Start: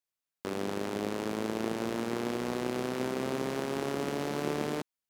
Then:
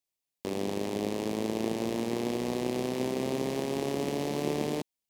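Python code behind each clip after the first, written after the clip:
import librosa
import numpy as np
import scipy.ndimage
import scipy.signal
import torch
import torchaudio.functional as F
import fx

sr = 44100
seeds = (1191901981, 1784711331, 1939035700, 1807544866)

y = fx.peak_eq(x, sr, hz=1400.0, db=-14.0, octaves=0.59)
y = y * 10.0 ** (2.5 / 20.0)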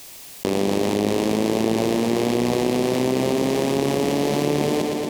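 y = fx.echo_feedback(x, sr, ms=117, feedback_pct=59, wet_db=-10)
y = fx.env_flatten(y, sr, amount_pct=70)
y = y * 10.0 ** (7.0 / 20.0)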